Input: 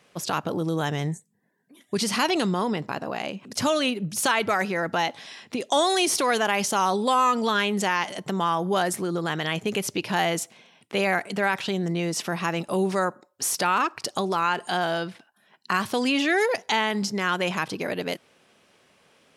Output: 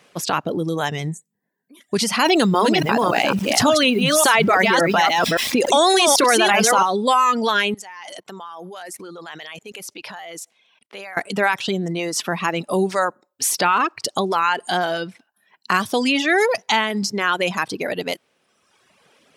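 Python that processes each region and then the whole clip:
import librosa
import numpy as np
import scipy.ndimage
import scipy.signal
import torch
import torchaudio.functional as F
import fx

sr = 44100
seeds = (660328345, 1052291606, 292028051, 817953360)

y = fx.chain(x, sr, fx.reverse_delay(ms=283, wet_db=-3.5),
    fx.sample_gate(floor_db=-43.5),
    fx.env_flatten(amount_pct=70), at=(2.26, 6.83))
y = fx.chain(y, sr, fx.highpass(hz=550.0, slope=6),
    fx.level_steps(step_db=20), at=(7.74, 11.17))
y = fx.dereverb_blind(y, sr, rt60_s=1.2)
y = fx.low_shelf(y, sr, hz=84.0, db=-8.5)
y = y * 10.0 ** (6.0 / 20.0)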